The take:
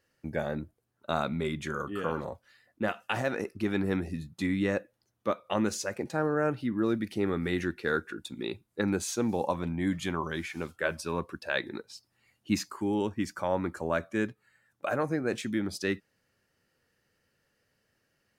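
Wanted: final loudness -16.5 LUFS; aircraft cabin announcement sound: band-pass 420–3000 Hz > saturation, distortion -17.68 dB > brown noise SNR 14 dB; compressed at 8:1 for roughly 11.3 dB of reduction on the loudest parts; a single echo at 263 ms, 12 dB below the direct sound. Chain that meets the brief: compression 8:1, threshold -35 dBFS; band-pass 420–3000 Hz; delay 263 ms -12 dB; saturation -30.5 dBFS; brown noise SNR 14 dB; trim +28.5 dB

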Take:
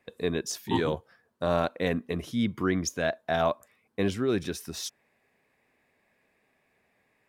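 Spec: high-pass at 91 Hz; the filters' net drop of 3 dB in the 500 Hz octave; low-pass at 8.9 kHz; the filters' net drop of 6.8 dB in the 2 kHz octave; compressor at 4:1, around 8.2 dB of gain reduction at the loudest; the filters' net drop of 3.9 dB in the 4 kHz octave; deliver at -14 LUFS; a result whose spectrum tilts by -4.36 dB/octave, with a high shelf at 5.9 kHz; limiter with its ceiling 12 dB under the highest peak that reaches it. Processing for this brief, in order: high-pass 91 Hz; low-pass 8.9 kHz; peaking EQ 500 Hz -3.5 dB; peaking EQ 2 kHz -8.5 dB; peaking EQ 4 kHz -5.5 dB; treble shelf 5.9 kHz +7.5 dB; compression 4:1, threshold -33 dBFS; trim +29.5 dB; peak limiter -3 dBFS

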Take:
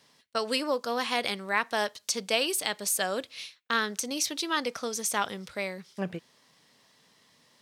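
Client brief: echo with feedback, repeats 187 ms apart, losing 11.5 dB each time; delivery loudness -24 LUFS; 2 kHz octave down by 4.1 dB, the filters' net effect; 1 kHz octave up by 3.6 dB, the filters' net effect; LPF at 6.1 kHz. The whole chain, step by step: low-pass 6.1 kHz; peaking EQ 1 kHz +6.5 dB; peaking EQ 2 kHz -7.5 dB; feedback delay 187 ms, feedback 27%, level -11.5 dB; trim +6 dB

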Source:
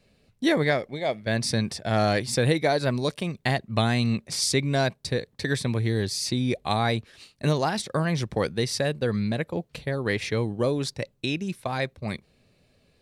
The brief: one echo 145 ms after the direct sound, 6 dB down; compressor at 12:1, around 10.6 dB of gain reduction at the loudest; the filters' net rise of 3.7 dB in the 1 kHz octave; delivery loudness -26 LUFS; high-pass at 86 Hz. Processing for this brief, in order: high-pass 86 Hz; peaking EQ 1 kHz +5.5 dB; compression 12:1, threshold -27 dBFS; delay 145 ms -6 dB; trim +6 dB

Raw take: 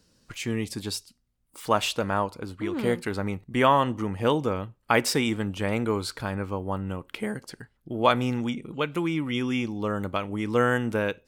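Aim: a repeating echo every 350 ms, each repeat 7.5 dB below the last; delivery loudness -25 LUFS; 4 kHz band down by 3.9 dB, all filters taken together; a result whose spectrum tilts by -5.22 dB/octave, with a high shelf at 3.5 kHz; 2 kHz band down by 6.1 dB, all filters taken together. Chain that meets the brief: peaking EQ 2 kHz -8.5 dB; treble shelf 3.5 kHz +6.5 dB; peaking EQ 4 kHz -7 dB; feedback delay 350 ms, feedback 42%, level -7.5 dB; trim +2.5 dB

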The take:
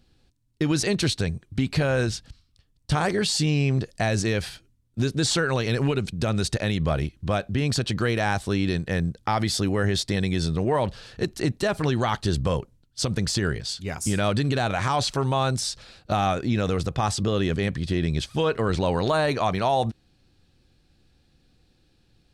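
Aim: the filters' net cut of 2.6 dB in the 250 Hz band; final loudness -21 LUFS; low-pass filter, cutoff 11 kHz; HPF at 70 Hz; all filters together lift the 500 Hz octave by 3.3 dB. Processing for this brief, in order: high-pass 70 Hz; low-pass 11 kHz; peaking EQ 250 Hz -5.5 dB; peaking EQ 500 Hz +5.5 dB; trim +3.5 dB

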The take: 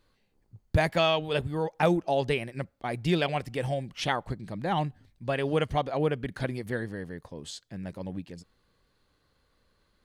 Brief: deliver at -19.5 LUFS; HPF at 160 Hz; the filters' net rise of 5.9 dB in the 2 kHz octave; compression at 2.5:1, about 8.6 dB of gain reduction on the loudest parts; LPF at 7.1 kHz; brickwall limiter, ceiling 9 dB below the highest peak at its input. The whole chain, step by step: high-pass 160 Hz; low-pass 7.1 kHz; peaking EQ 2 kHz +7.5 dB; compression 2.5:1, threshold -31 dBFS; trim +17 dB; peak limiter -6 dBFS

